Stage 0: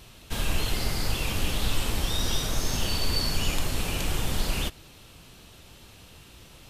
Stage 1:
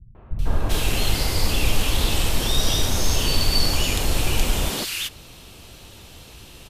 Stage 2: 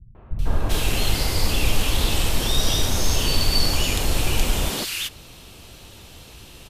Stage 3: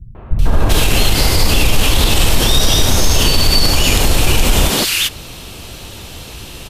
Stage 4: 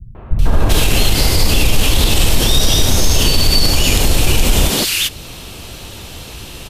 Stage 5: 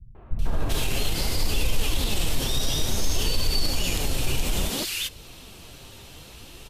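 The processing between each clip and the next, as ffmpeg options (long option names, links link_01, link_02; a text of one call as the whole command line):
ffmpeg -i in.wav -filter_complex "[0:a]acrossover=split=170|1500[link_01][link_02][link_03];[link_02]adelay=150[link_04];[link_03]adelay=390[link_05];[link_01][link_04][link_05]amix=inputs=3:normalize=0,acontrast=37,volume=1.5dB" out.wav
ffmpeg -i in.wav -af anull out.wav
ffmpeg -i in.wav -af "alimiter=level_in=13dB:limit=-1dB:release=50:level=0:latency=1,volume=-1dB" out.wav
ffmpeg -i in.wav -af "adynamicequalizer=threshold=0.0316:dfrequency=1200:dqfactor=0.74:tfrequency=1200:tqfactor=0.74:attack=5:release=100:ratio=0.375:range=2:mode=cutabove:tftype=bell" out.wav
ffmpeg -i in.wav -af "flanger=delay=1.9:depth=5.8:regen=63:speed=0.59:shape=sinusoidal,volume=-8.5dB" out.wav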